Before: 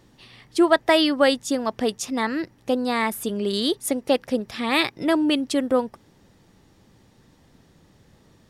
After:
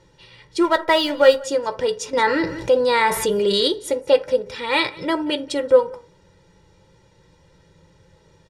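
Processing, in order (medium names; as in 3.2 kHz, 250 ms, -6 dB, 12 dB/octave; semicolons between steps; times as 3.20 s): low-pass 7.4 kHz 12 dB/octave; 0.60–1.44 s: hysteresis with a dead band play -29.5 dBFS; comb 2.1 ms, depth 81%; delay 181 ms -23 dB; reverberation RT60 0.35 s, pre-delay 3 ms, DRR 6 dB; 2.13–3.68 s: level flattener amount 50%; trim -1 dB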